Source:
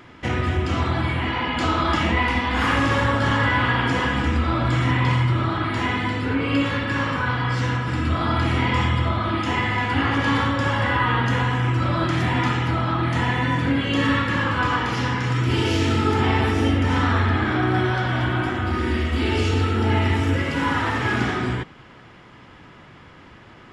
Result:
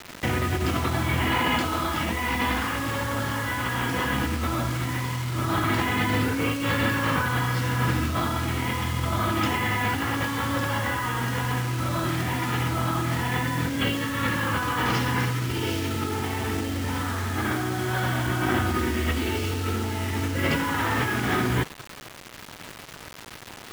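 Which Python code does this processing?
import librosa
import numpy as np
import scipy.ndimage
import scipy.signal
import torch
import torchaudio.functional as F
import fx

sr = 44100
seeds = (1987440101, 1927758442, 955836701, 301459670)

y = scipy.signal.sosfilt(scipy.signal.butter(2, 59.0, 'highpass', fs=sr, output='sos'), x)
y = fx.over_compress(y, sr, threshold_db=-26.0, ratio=-1.0)
y = fx.quant_dither(y, sr, seeds[0], bits=6, dither='none')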